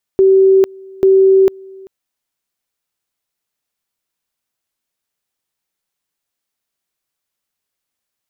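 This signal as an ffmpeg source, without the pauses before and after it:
-f lavfi -i "aevalsrc='pow(10,(-5.5-26.5*gte(mod(t,0.84),0.45))/20)*sin(2*PI*384*t)':d=1.68:s=44100"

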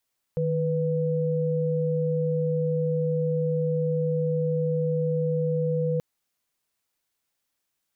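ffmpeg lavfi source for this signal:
-f lavfi -i "aevalsrc='0.0562*(sin(2*PI*155.56*t)+sin(2*PI*493.88*t))':d=5.63:s=44100"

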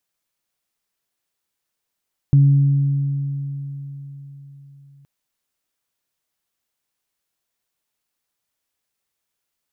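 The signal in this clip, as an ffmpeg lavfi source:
-f lavfi -i "aevalsrc='0.398*pow(10,-3*t/4.24)*sin(2*PI*140*t)+0.0501*pow(10,-3*t/3.24)*sin(2*PI*280*t)':d=2.72:s=44100"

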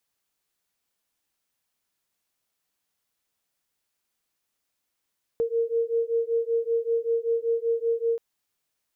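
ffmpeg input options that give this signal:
-f lavfi -i "aevalsrc='0.0531*(sin(2*PI*459*t)+sin(2*PI*464.2*t))':d=2.78:s=44100"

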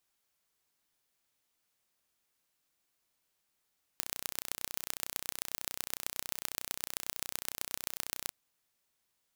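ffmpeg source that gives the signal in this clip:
-f lavfi -i "aevalsrc='0.531*eq(mod(n,1423),0)*(0.5+0.5*eq(mod(n,5692),0))':d=4.32:s=44100"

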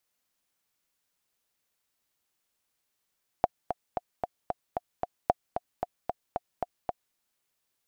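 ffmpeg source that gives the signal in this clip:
-f lavfi -i "aevalsrc='pow(10,(-8-8*gte(mod(t,7*60/226),60/226))/20)*sin(2*PI*715*mod(t,60/226))*exp(-6.91*mod(t,60/226)/0.03)':d=3.71:s=44100"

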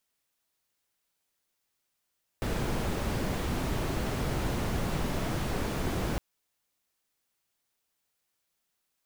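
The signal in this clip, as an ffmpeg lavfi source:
-f lavfi -i "anoisesrc=c=brown:a=0.148:d=3.76:r=44100:seed=1"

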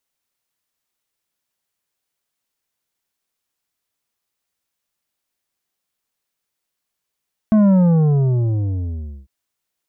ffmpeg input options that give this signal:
-f lavfi -i "aevalsrc='0.299*clip((1.75-t)/1.59,0,1)*tanh(2.66*sin(2*PI*220*1.75/log(65/220)*(exp(log(65/220)*t/1.75)-1)))/tanh(2.66)':d=1.75:s=44100"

